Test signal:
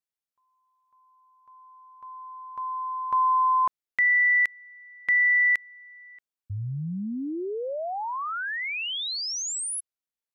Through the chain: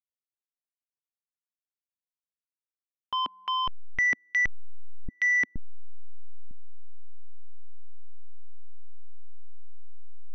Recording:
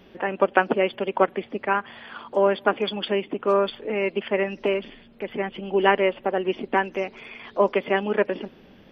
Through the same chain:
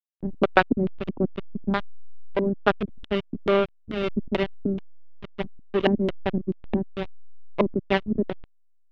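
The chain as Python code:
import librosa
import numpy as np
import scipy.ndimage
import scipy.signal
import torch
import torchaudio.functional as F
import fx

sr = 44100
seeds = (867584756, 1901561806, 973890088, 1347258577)

y = fx.backlash(x, sr, play_db=-15.5)
y = fx.filter_lfo_lowpass(y, sr, shape='square', hz=2.3, low_hz=250.0, high_hz=3200.0, q=2.3)
y = y * 10.0 ** (1.0 / 20.0)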